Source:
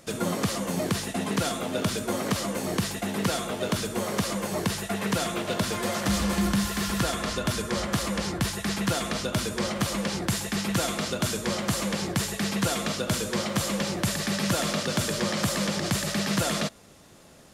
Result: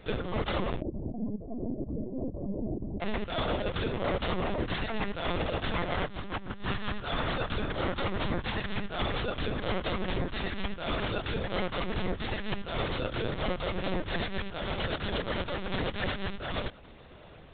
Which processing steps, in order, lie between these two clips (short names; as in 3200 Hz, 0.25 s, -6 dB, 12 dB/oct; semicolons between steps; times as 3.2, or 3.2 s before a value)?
negative-ratio compressor -30 dBFS, ratio -0.5; 0.8–3.01 Gaussian blur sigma 17 samples; LPC vocoder at 8 kHz pitch kept